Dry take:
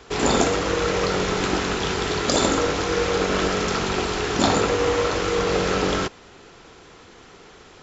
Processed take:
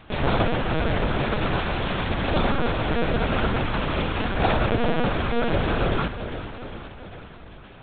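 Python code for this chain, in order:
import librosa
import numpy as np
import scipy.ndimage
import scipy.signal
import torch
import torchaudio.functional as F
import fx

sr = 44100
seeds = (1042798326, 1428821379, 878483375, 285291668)

p1 = fx.tracing_dist(x, sr, depth_ms=0.33)
p2 = scipy.signal.sosfilt(scipy.signal.butter(12, 260.0, 'highpass', fs=sr, output='sos'), p1)
p3 = p2 + fx.echo_feedback(p2, sr, ms=400, feedback_pct=60, wet_db=-11.0, dry=0)
y = fx.lpc_vocoder(p3, sr, seeds[0], excitation='pitch_kept', order=8)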